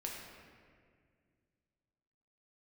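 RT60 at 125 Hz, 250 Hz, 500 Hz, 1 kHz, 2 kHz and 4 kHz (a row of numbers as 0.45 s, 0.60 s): 2.9 s, 2.7 s, 2.2 s, 1.7 s, 1.8 s, 1.3 s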